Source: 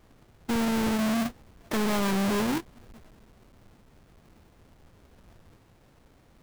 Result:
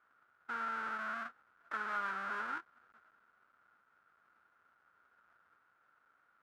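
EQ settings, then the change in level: band-pass filter 1.4 kHz, Q 9.8; +6.0 dB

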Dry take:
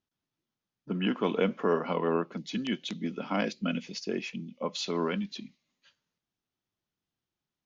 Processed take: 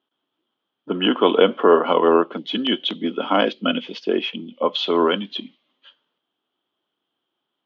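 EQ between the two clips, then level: high-pass 150 Hz; resonant low-pass 3.2 kHz, resonance Q 11; high-order bell 620 Hz +13 dB 2.9 oct; 0.0 dB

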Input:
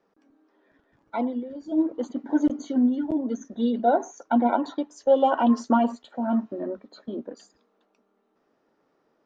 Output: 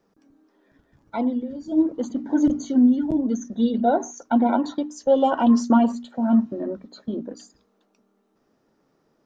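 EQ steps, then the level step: tone controls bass +12 dB, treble +6 dB; peaking EQ 5.9 kHz +2.5 dB; hum notches 60/120/180/240/300 Hz; 0.0 dB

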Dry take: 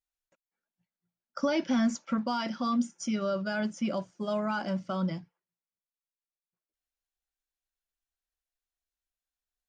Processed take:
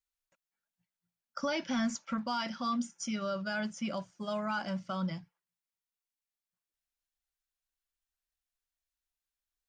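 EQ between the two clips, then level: peaking EQ 360 Hz -9 dB 1.7 oct; 0.0 dB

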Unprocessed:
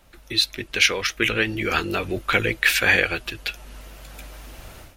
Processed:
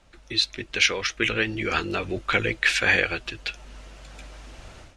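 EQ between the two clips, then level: low-pass 8.1 kHz 24 dB/octave; -2.5 dB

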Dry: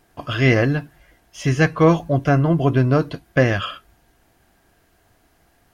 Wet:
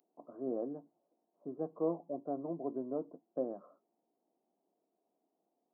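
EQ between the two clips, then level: Gaussian low-pass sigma 15 samples; steep high-pass 190 Hz 36 dB/octave; differentiator; +10.5 dB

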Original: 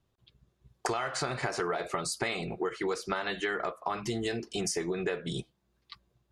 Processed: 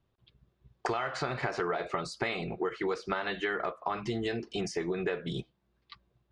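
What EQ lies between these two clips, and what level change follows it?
low-pass 3.9 kHz 12 dB/octave; 0.0 dB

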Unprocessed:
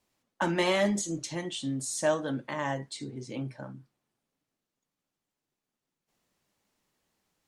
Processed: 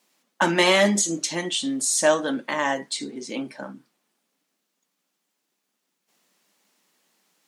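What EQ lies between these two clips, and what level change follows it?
brick-wall FIR high-pass 160 Hz; tilt shelf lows -3 dB, about 1.2 kHz; +9.0 dB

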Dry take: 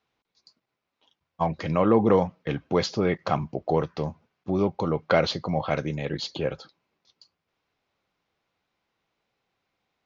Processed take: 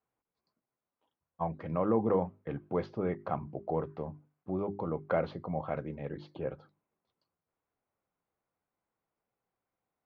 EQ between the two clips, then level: low-pass 1.4 kHz 12 dB/octave; hum notches 50/100/150/200/250/300/350/400 Hz; -8.0 dB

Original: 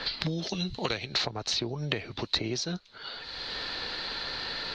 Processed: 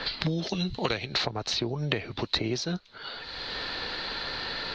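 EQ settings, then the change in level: treble shelf 6.6 kHz -11 dB; +3.0 dB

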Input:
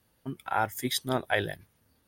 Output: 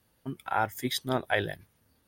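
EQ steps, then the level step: dynamic bell 9.9 kHz, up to -5 dB, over -49 dBFS, Q 0.74; 0.0 dB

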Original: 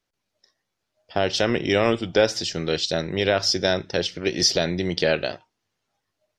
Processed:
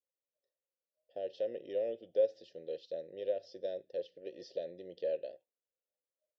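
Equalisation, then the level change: vowel filter e; distance through air 130 m; high-order bell 1.6 kHz -15.5 dB; -7.5 dB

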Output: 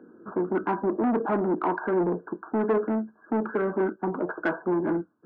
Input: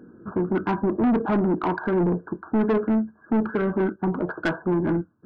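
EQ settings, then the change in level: three-band isolator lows -17 dB, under 240 Hz, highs -17 dB, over 2.1 kHz; 0.0 dB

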